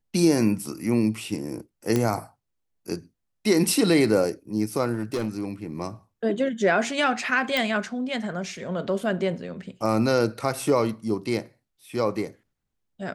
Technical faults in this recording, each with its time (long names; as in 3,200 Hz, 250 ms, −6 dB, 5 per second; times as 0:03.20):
0:01.96: click −10 dBFS
0:04.93–0:05.49: clipping −22 dBFS
0:07.57: click −10 dBFS